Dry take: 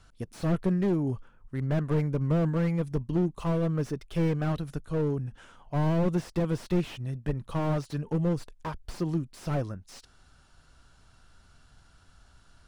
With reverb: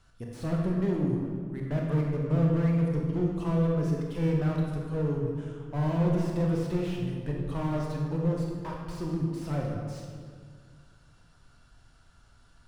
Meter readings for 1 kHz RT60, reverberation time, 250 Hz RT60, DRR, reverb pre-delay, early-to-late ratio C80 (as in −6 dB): 1.8 s, 2.0 s, 2.5 s, −1.5 dB, 23 ms, 3.0 dB